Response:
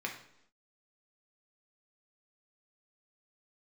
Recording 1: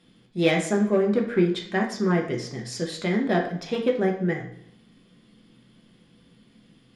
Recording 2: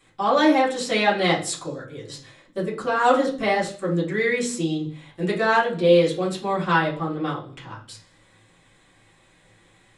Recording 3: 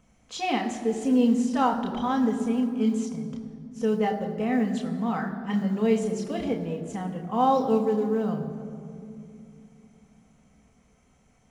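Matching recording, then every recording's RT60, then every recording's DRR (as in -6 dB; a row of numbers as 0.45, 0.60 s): 1; 0.75 s, not exponential, 2.6 s; 0.0, -7.5, 1.5 dB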